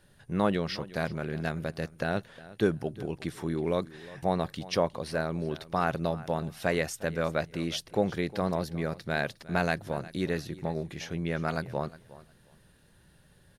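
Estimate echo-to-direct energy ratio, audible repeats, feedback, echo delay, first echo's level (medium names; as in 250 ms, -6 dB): -18.5 dB, 2, 19%, 359 ms, -18.5 dB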